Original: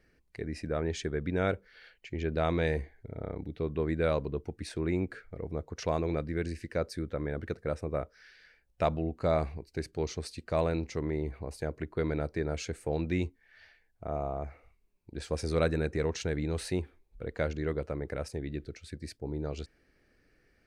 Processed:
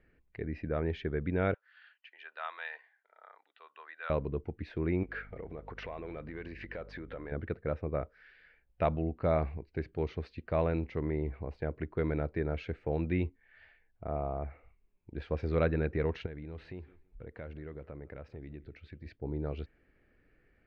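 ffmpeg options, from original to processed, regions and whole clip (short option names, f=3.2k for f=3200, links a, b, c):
-filter_complex "[0:a]asettb=1/sr,asplit=3[a][b][c];[a]atrim=end=1.544[d];[b]atrim=start=1.54:end=4.1,asetpts=PTS-STARTPTS,afade=t=in:d=0.004:c=qsin,afade=t=out:st=2.556:d=0.004:c=qsin,highpass=f=1k:w=0.5412,highpass=f=1k:w=1.3066,bandreject=f=2.2k:w=5.2[e];[c]atrim=start=4.096[f];[d][e]acrossfade=d=0.004:c1=hsin:c2=qsin[g];[g][f]acrossfade=d=0.004:c1=qsin:c2=hsin,asettb=1/sr,asplit=3[h][i][j];[h]atrim=end=5.034[k];[i]atrim=start=5.03:end=7.32,asetpts=PTS-STARTPTS,afade=t=in:d=0.004:c=qsin,afade=t=out:st=2.286:d=0.004:c=qsin,acompressor=threshold=-43dB:ratio=12:attack=3.2:release=140:knee=1:detection=peak,asplit=2[l][m];[m]highpass=f=720:p=1,volume=20dB,asoftclip=type=tanh:threshold=-26dB[n];[l][n]amix=inputs=2:normalize=0,lowpass=f=6.2k:p=1,volume=-6dB,aeval=exprs='val(0)+0.00251*(sin(2*PI*50*n/s)+sin(2*PI*2*50*n/s)/2+sin(2*PI*3*50*n/s)/3+sin(2*PI*4*50*n/s)/4+sin(2*PI*5*50*n/s)/5)':c=same[o];[j]atrim=start=7.316[p];[k][o]acrossfade=d=0.004:c1=hsin:c2=qsin[q];[q][p]acrossfade=d=0.004:c1=qsin:c2=hsin,asettb=1/sr,asplit=3[r][s][t];[r]atrim=end=16.264[u];[s]atrim=start=16.26:end=19.06,asetpts=PTS-STARTPTS,afade=t=in:d=0.004:c=qsin,afade=t=out:st=2.796:d=0.004:c=qsin,acompressor=threshold=-45dB:ratio=2.5:attack=3.2:release=140:knee=1:detection=peak,asplit=2[v][w];[w]adelay=164,lowpass=f=4.6k:p=1,volume=-21.5dB,asplit=2[x][y];[y]adelay=164,lowpass=f=4.6k:p=1,volume=0.27[z];[v][x][z]amix=inputs=3:normalize=0,atrim=end_sample=123480[aa];[t]atrim=start=19.056[ab];[u][aa]acrossfade=d=0.004:c1=hsin:c2=qsin[ac];[ac][ab]acrossfade=d=0.004:c1=qsin:c2=hsin,lowpass=f=3k:w=0.5412,lowpass=f=3k:w=1.3066,lowshelf=f=140:g=3,volume=-1.5dB"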